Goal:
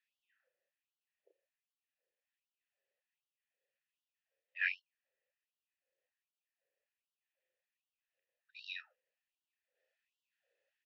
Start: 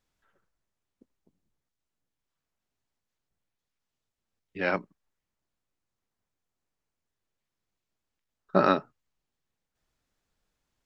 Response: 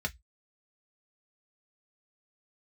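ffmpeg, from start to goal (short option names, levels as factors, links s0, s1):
-filter_complex "[0:a]asplit=3[s0][s1][s2];[s0]bandpass=f=530:t=q:w=8,volume=1[s3];[s1]bandpass=f=1840:t=q:w=8,volume=0.501[s4];[s2]bandpass=f=2480:t=q:w=8,volume=0.355[s5];[s3][s4][s5]amix=inputs=3:normalize=0,asplit=2[s6][s7];[s7]adelay=33,volume=0.631[s8];[s6][s8]amix=inputs=2:normalize=0,afftfilt=real='re*gte(b*sr/1024,320*pow(2800/320,0.5+0.5*sin(2*PI*1.3*pts/sr)))':imag='im*gte(b*sr/1024,320*pow(2800/320,0.5+0.5*sin(2*PI*1.3*pts/sr)))':win_size=1024:overlap=0.75,volume=3.16"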